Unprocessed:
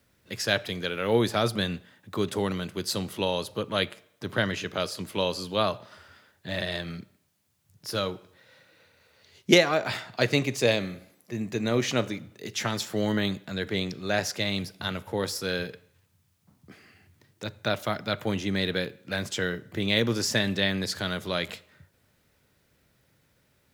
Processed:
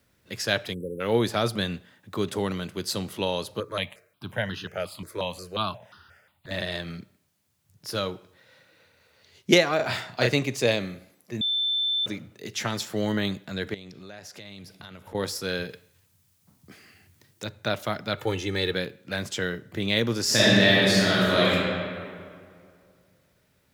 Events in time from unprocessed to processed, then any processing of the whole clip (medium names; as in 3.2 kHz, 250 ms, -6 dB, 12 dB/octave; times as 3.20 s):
0.74–1.01 s: spectral selection erased 570–7600 Hz
3.60–6.51 s: stepped phaser 5.6 Hz 790–2200 Hz
9.76–10.34 s: doubling 33 ms -2.5 dB
11.41–12.06 s: bleep 3.54 kHz -22.5 dBFS
13.74–15.15 s: compression 5:1, threshold -41 dBFS
15.70–17.45 s: treble shelf 4 kHz +8.5 dB
18.17–18.74 s: comb 2.3 ms, depth 73%
20.23–21.52 s: reverb throw, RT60 2.2 s, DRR -8.5 dB